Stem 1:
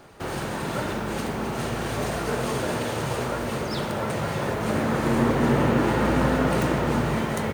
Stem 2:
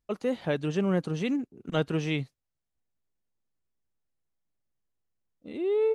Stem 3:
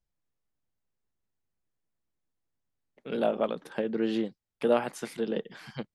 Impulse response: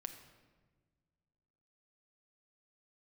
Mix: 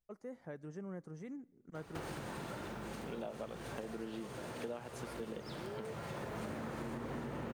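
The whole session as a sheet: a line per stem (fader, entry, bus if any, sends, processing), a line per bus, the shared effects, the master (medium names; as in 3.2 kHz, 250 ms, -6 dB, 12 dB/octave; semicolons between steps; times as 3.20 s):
-3.5 dB, 1.75 s, send -13.5 dB, compression, threshold -24 dBFS, peak gain reduction 8 dB; auto duck -16 dB, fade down 1.55 s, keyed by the third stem
-18.5 dB, 0.00 s, send -15 dB, high-order bell 3.3 kHz -15 dB 1 oct
-7.0 dB, 0.00 s, no send, none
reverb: on, RT60 1.5 s, pre-delay 6 ms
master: compression 6:1, threshold -40 dBFS, peak gain reduction 14 dB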